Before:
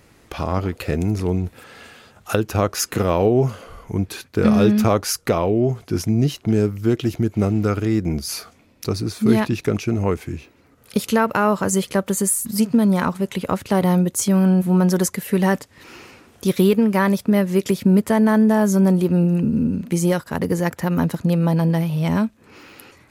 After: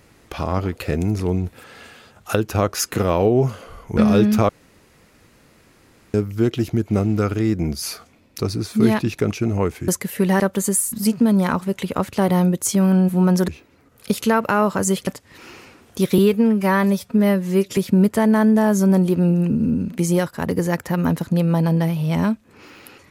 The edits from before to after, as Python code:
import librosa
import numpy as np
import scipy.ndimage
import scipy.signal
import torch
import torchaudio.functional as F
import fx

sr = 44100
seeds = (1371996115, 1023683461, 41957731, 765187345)

y = fx.edit(x, sr, fx.cut(start_s=3.97, length_s=0.46),
    fx.room_tone_fill(start_s=4.95, length_s=1.65),
    fx.swap(start_s=10.34, length_s=1.59, other_s=15.01, other_length_s=0.52),
    fx.stretch_span(start_s=16.64, length_s=1.06, factor=1.5), tone=tone)